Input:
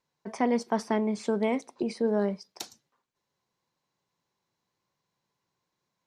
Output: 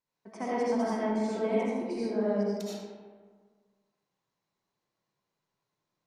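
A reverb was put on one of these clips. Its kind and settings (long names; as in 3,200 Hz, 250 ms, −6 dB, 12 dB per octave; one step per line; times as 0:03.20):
comb and all-pass reverb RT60 1.6 s, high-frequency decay 0.5×, pre-delay 40 ms, DRR −8.5 dB
level −11 dB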